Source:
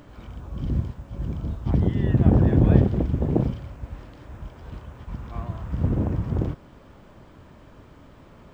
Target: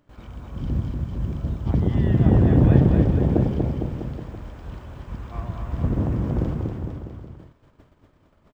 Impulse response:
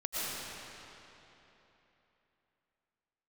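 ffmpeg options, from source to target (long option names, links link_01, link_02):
-af "agate=range=-17dB:threshold=-45dB:ratio=16:detection=peak,aecho=1:1:240|456|650.4|825.4|982.8:0.631|0.398|0.251|0.158|0.1"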